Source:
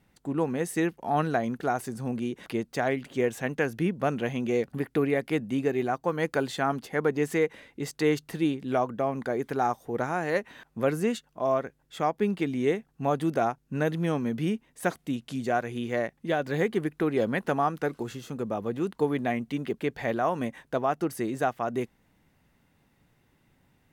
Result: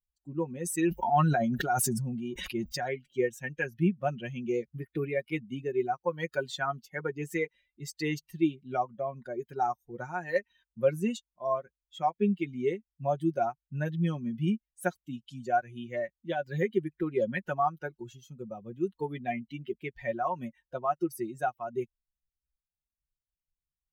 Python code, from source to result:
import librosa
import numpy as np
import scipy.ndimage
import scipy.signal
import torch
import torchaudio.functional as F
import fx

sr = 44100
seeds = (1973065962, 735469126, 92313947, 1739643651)

y = fx.bin_expand(x, sr, power=2.0)
y = y + 0.7 * np.pad(y, (int(5.5 * sr / 1000.0), 0))[:len(y)]
y = fx.sustainer(y, sr, db_per_s=21.0, at=(0.48, 2.84))